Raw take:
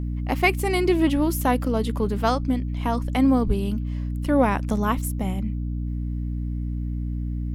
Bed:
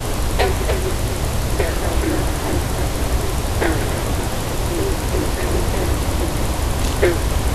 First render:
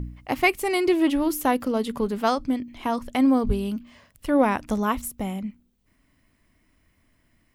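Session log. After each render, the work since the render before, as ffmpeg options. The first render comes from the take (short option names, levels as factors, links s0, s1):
-af "bandreject=f=60:t=h:w=4,bandreject=f=120:t=h:w=4,bandreject=f=180:t=h:w=4,bandreject=f=240:t=h:w=4,bandreject=f=300:t=h:w=4"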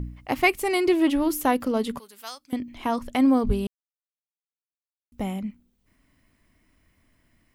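-filter_complex "[0:a]asettb=1/sr,asplit=3[s0][s1][s2];[s0]atrim=end=1.994[s3];[s1]atrim=start=1.99:end=2.53,asetpts=PTS-STARTPTS,afade=t=in:d=0.004:c=qsin,afade=t=out:st=0.536:d=0.004:c=qsin,aderivative[s4];[s2]atrim=start=2.526[s5];[s3][s4]acrossfade=d=0.004:c1=hsin:c2=qsin[s6];[s6][s5]acrossfade=d=0.004:c1=qsin:c2=hsin,asplit=3[s7][s8][s9];[s7]atrim=end=3.67,asetpts=PTS-STARTPTS,afade=t=out:st=3.666:d=0.004:c=hsin[s10];[s8]atrim=start=3.67:end=5.12,asetpts=PTS-STARTPTS,volume=0[s11];[s9]atrim=start=5.12,asetpts=PTS-STARTPTS,afade=t=in:d=0.004:c=hsin[s12];[s10][s11][s12]concat=n=3:v=0:a=1"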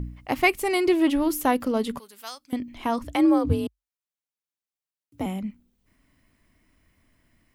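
-filter_complex "[0:a]asettb=1/sr,asplit=3[s0][s1][s2];[s0]atrim=end=3.044[s3];[s1]atrim=start=3.04:end=5.26,asetpts=PTS-STARTPTS,afade=t=in:d=0.004:c=qsin,afade=t=out:st=2.216:d=0.004:c=qsin,afreqshift=48[s4];[s2]atrim=start=5.256[s5];[s3][s4]acrossfade=d=0.004:c1=hsin:c2=qsin[s6];[s6][s5]acrossfade=d=0.004:c1=qsin:c2=hsin"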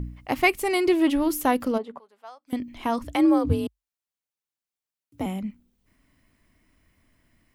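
-filter_complex "[0:a]asplit=3[s0][s1][s2];[s0]afade=t=out:st=1.77:d=0.02[s3];[s1]bandpass=f=710:t=q:w=1.5,afade=t=in:st=1.77:d=0.02,afade=t=out:st=2.46:d=0.02[s4];[s2]afade=t=in:st=2.46:d=0.02[s5];[s3][s4][s5]amix=inputs=3:normalize=0"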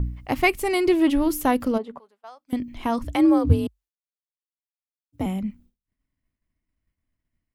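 -af "agate=range=0.0224:threshold=0.00316:ratio=3:detection=peak,lowshelf=f=150:g=9.5"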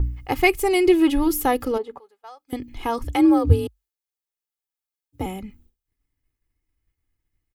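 -af "highshelf=f=12000:g=6.5,aecho=1:1:2.4:0.66"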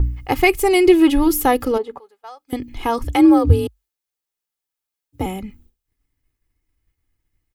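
-af "volume=1.68,alimiter=limit=0.794:level=0:latency=1"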